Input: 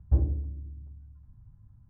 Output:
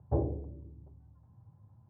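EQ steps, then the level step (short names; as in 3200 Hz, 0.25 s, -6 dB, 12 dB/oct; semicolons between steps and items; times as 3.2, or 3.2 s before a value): HPF 95 Hz 24 dB/oct; air absorption 250 m; band shelf 610 Hz +12 dB; 0.0 dB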